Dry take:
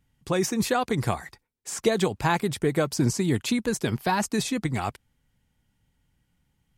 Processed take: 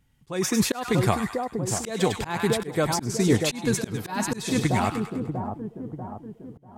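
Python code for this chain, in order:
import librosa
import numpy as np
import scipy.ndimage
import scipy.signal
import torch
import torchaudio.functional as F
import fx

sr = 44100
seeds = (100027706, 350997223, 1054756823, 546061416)

y = fx.echo_split(x, sr, split_hz=1000.0, low_ms=641, high_ms=101, feedback_pct=52, wet_db=-7.0)
y = fx.auto_swell(y, sr, attack_ms=249.0)
y = y * librosa.db_to_amplitude(3.5)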